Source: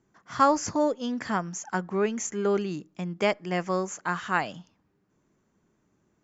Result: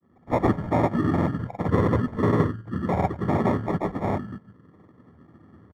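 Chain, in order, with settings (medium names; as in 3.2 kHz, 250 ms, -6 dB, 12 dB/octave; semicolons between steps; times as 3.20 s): octave divider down 2 oct, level +2 dB; high-pass 82 Hz; whisper effect; on a send: delay 95 ms -22.5 dB; on the sum: reverberation RT60 0.35 s, pre-delay 3 ms, DRR 10.5 dB; in parallel at -2 dB: compression, threshold -24 dBFS, peak gain reduction 17.5 dB; on the sum: hum notches 60/120/180 Hz; speed mistake 44.1 kHz file played as 48 kHz; granulator; level rider gain up to 9 dB; sample-and-hold 29×; Savitzky-Golay filter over 41 samples; trim -8 dB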